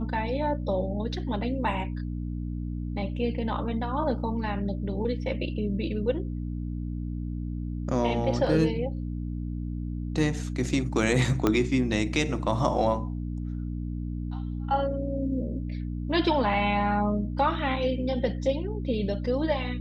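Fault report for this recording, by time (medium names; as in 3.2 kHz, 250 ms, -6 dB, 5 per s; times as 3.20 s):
hum 60 Hz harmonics 5 -32 dBFS
11.47 s: pop -10 dBFS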